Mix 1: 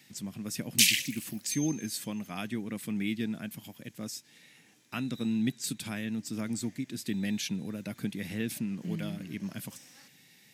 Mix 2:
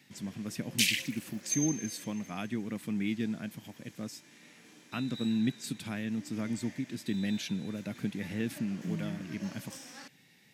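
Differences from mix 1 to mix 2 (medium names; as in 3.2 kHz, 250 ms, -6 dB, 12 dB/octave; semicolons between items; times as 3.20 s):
first sound +12.0 dB; master: add treble shelf 3.9 kHz -9 dB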